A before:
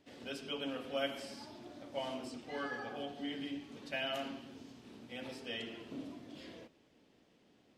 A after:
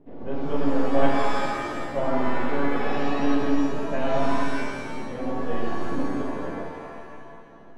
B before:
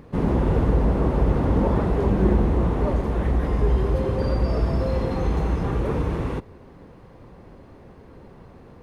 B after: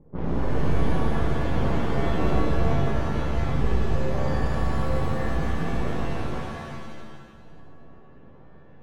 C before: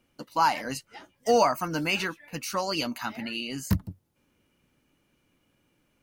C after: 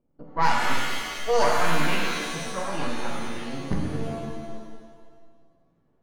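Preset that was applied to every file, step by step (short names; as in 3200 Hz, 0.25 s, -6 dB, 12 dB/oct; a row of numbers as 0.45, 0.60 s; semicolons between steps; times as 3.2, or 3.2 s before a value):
half-wave gain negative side -12 dB; low-pass opened by the level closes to 600 Hz, open at -17.5 dBFS; shimmer reverb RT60 1.5 s, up +7 st, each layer -2 dB, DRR -0.5 dB; match loudness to -27 LUFS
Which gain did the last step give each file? +17.0, -7.0, +0.5 dB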